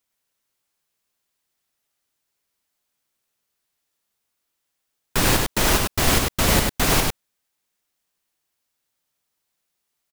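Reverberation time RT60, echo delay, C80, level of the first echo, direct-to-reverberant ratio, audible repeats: no reverb, 99 ms, no reverb, -3.0 dB, no reverb, 1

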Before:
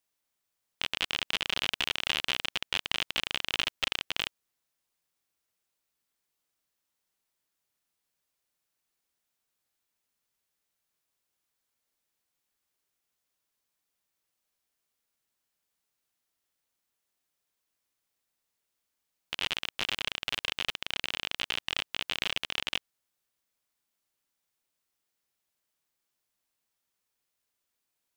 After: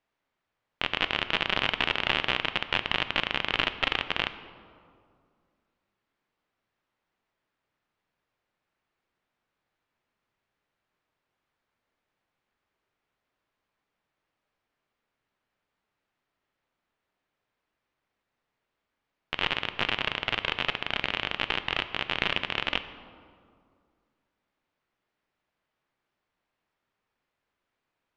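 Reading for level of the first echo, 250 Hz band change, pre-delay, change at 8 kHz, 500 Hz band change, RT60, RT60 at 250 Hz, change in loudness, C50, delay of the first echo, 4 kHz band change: no echo, +9.0 dB, 3 ms, under -10 dB, +9.0 dB, 2.2 s, 2.6 s, +3.5 dB, 12.5 dB, no echo, +1.5 dB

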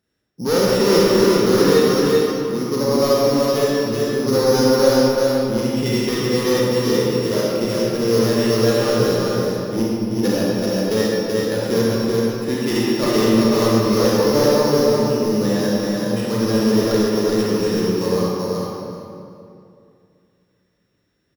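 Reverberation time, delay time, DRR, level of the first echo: 2.5 s, 382 ms, -7.5 dB, -3.0 dB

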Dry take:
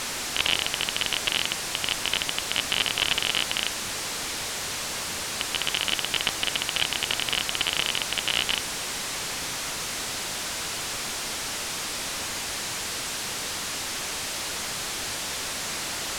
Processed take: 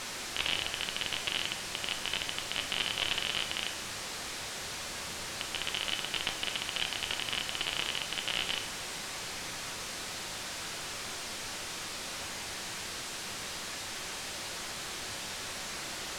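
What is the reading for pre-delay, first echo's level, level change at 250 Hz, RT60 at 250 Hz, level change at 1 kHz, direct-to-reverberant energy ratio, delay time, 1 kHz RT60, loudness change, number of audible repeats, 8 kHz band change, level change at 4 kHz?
5 ms, no echo, -7.0 dB, 1.4 s, -7.0 dB, 5.5 dB, no echo, 0.80 s, -8.0 dB, no echo, -9.5 dB, -7.5 dB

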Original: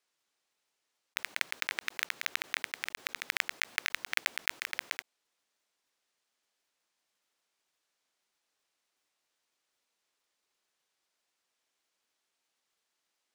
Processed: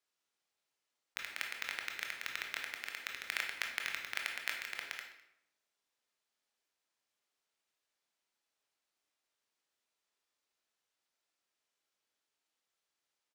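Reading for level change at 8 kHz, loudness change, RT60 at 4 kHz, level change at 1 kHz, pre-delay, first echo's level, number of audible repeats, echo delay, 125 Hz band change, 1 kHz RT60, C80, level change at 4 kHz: -6.0 dB, -5.5 dB, 0.60 s, -4.5 dB, 19 ms, -21.0 dB, 1, 207 ms, no reading, 0.75 s, 8.0 dB, -5.5 dB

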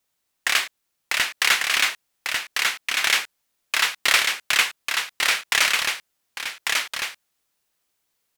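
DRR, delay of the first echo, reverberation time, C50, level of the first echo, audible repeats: no reverb, 1146 ms, no reverb, no reverb, -3.5 dB, 1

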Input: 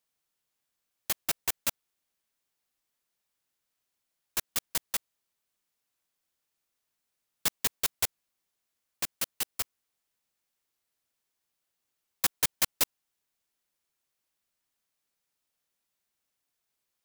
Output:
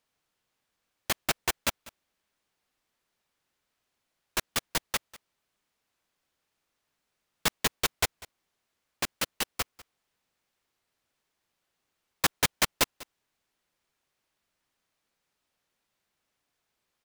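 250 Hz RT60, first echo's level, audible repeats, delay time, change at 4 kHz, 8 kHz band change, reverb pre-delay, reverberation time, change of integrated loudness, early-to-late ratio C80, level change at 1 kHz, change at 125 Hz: no reverb, -20.5 dB, 1, 196 ms, +4.0 dB, 0.0 dB, no reverb, no reverb, +0.5 dB, no reverb, +7.5 dB, +8.0 dB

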